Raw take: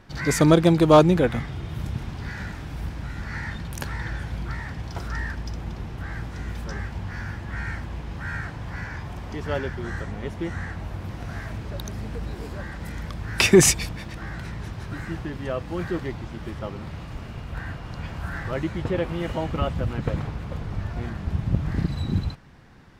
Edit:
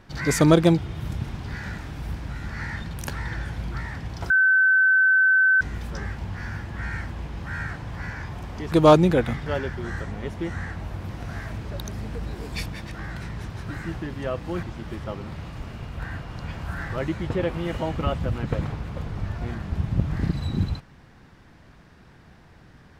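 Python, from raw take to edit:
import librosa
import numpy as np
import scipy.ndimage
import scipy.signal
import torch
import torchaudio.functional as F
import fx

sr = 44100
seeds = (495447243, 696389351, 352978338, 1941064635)

y = fx.edit(x, sr, fx.move(start_s=0.78, length_s=0.74, to_s=9.46),
    fx.bleep(start_s=5.04, length_s=1.31, hz=1530.0, db=-14.5),
    fx.cut(start_s=12.52, length_s=1.23),
    fx.cut(start_s=15.86, length_s=0.32), tone=tone)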